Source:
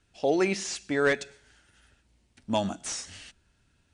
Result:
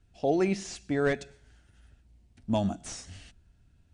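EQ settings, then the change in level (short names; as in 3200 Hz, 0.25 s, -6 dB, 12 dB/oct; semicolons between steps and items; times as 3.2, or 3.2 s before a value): low shelf 100 Hz +5 dB; low shelf 330 Hz +12 dB; bell 700 Hz +6 dB 0.22 oct; -7.0 dB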